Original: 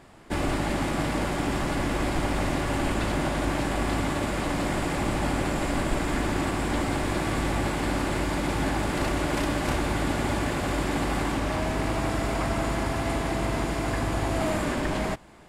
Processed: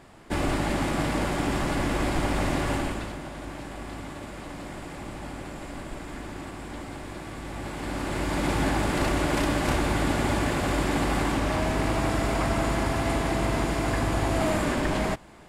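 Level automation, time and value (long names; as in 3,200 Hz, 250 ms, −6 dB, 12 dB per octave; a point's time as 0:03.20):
0:02.72 +0.5 dB
0:03.20 −11 dB
0:07.41 −11 dB
0:08.46 +1.5 dB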